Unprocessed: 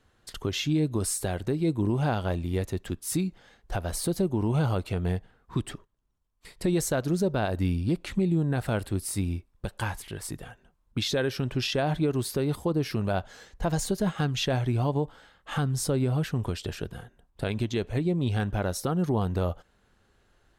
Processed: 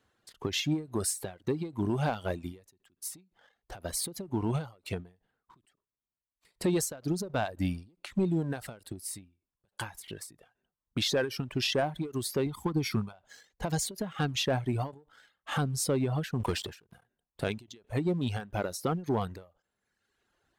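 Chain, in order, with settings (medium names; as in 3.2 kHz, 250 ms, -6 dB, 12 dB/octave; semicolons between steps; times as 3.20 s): high-pass 150 Hz 6 dB/octave; reverb removal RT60 1 s; 12.46–13.13 s: comb 0.9 ms, depth 91%; waveshaping leveller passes 1; 8.83–9.78 s: compression, threshold -32 dBFS, peak gain reduction 8.5 dB; 16.40–17.01 s: waveshaping leveller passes 2; endings held to a fixed fall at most 170 dB/s; trim -2.5 dB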